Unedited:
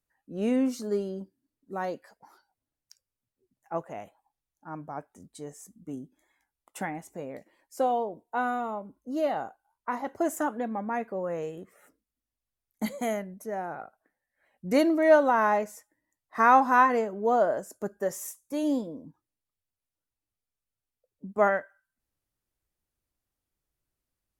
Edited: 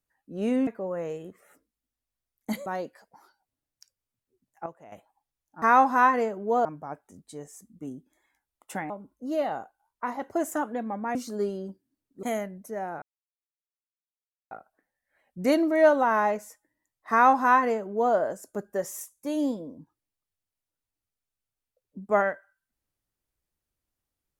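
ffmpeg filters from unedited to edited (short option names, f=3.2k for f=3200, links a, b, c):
-filter_complex "[0:a]asplit=11[a][b][c][d][e][f][g][h][i][j][k];[a]atrim=end=0.672[l];[b]atrim=start=10.998:end=12.992[m];[c]atrim=start=1.748:end=3.752[n];[d]atrim=start=3.748:end=4.012,asetpts=PTS-STARTPTS,volume=-10.5dB[o];[e]atrim=start=4.008:end=4.712[p];[f]atrim=start=16.378:end=17.412[q];[g]atrim=start=4.708:end=6.962[r];[h]atrim=start=8.748:end=11.002[s];[i]atrim=start=0.668:end=1.752[t];[j]atrim=start=12.988:end=13.78,asetpts=PTS-STARTPTS,afade=t=out:st=0.788:d=0.004:c=hsin,apad=pad_dur=1.49[u];[k]atrim=start=13.78,asetpts=PTS-STARTPTS,afade=t=in:d=0.004:c=hsin[v];[l][m]acrossfade=d=0.004:c1=hsin:c2=hsin[w];[w][n]acrossfade=d=0.004:c1=hsin:c2=hsin[x];[x][o]acrossfade=d=0.004:c1=hsin:c2=hsin[y];[y][p]acrossfade=d=0.004:c1=hsin:c2=hsin[z];[z][q]acrossfade=d=0.004:c1=hsin:c2=hsin[aa];[aa][r]acrossfade=d=0.004:c1=hsin:c2=hsin[ab];[ab][s]acrossfade=d=0.004:c1=hsin:c2=hsin[ac];[ac][t]acrossfade=d=0.004:c1=hsin:c2=hsin[ad];[u][v]concat=n=2:v=0:a=1[ae];[ad][ae]acrossfade=d=0.004:c1=hsin:c2=hsin"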